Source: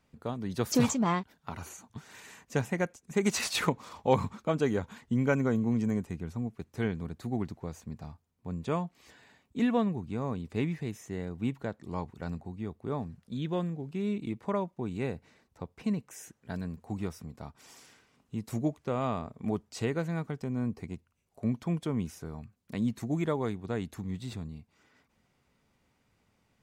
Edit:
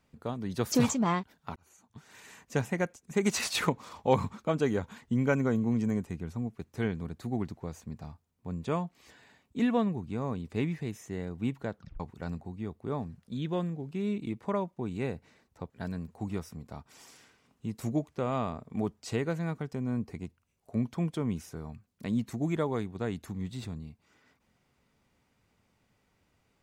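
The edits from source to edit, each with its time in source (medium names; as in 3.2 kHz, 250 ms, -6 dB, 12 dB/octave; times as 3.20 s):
1.56–2.41 s: fade in linear
11.75 s: tape stop 0.25 s
15.70–16.39 s: delete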